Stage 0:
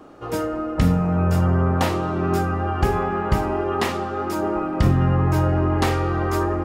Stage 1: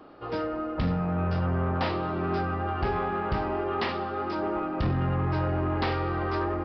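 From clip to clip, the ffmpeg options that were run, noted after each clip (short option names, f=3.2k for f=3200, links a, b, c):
-af "lowshelf=f=420:g=-4,aresample=11025,asoftclip=type=tanh:threshold=-17dB,aresample=44100,volume=-3dB"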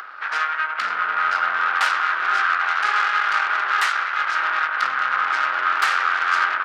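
-af "aeval=exprs='0.112*(cos(1*acos(clip(val(0)/0.112,-1,1)))-cos(1*PI/2))+0.0251*(cos(3*acos(clip(val(0)/0.112,-1,1)))-cos(3*PI/2))+0.0224*(cos(4*acos(clip(val(0)/0.112,-1,1)))-cos(4*PI/2))+0.00891*(cos(7*acos(clip(val(0)/0.112,-1,1)))-cos(7*PI/2))+0.00562*(cos(8*acos(clip(val(0)/0.112,-1,1)))-cos(8*PI/2))':c=same,acompressor=mode=upward:threshold=-32dB:ratio=2.5,highpass=f=1.4k:t=q:w=4.8,volume=7.5dB"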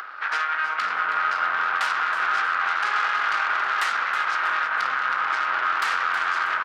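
-filter_complex "[0:a]alimiter=limit=-14dB:level=0:latency=1:release=88,asplit=2[a][b];[b]asplit=5[c][d][e][f][g];[c]adelay=320,afreqshift=-150,volume=-11dB[h];[d]adelay=640,afreqshift=-300,volume=-17.6dB[i];[e]adelay=960,afreqshift=-450,volume=-24.1dB[j];[f]adelay=1280,afreqshift=-600,volume=-30.7dB[k];[g]adelay=1600,afreqshift=-750,volume=-37.2dB[l];[h][i][j][k][l]amix=inputs=5:normalize=0[m];[a][m]amix=inputs=2:normalize=0"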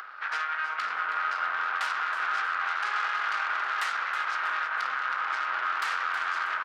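-af "lowshelf=f=240:g=-10.5,volume=-5.5dB"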